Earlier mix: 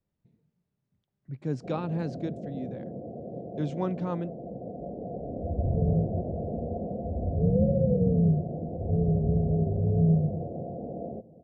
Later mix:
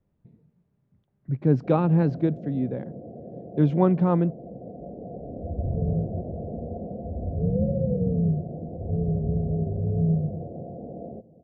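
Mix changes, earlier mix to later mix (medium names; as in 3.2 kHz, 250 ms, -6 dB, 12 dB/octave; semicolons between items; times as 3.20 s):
speech +11.5 dB; master: add tape spacing loss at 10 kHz 33 dB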